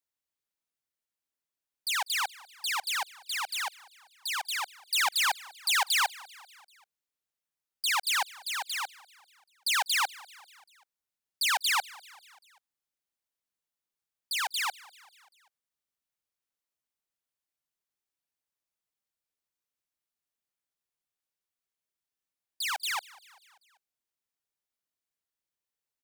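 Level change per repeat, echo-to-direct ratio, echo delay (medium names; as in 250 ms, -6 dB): -4.5 dB, -20.0 dB, 195 ms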